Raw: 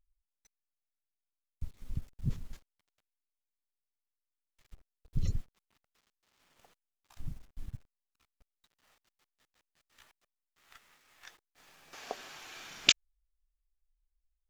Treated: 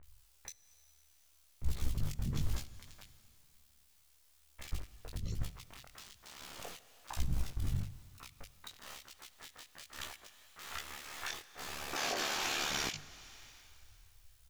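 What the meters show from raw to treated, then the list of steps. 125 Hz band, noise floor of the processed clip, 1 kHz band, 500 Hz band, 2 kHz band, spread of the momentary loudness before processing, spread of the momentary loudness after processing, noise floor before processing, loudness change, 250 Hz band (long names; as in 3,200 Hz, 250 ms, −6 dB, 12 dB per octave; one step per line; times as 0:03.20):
+1.5 dB, −67 dBFS, +9.0 dB, +6.0 dB, 0.0 dB, 23 LU, 19 LU, below −85 dBFS, −6.0 dB, +2.0 dB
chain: mains-hum notches 50/100/150 Hz
compressor whose output falls as the input rises −41 dBFS, ratio −1
brickwall limiter −36 dBFS, peak gain reduction 11 dB
amplitude modulation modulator 73 Hz, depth 60%
chorus effect 1.1 Hz, delay 15.5 ms, depth 7.4 ms
multiband delay without the direct sound lows, highs 30 ms, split 1,900 Hz
dense smooth reverb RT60 2.5 s, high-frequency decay 0.95×, DRR 16 dB
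one half of a high-frequency compander encoder only
level +17.5 dB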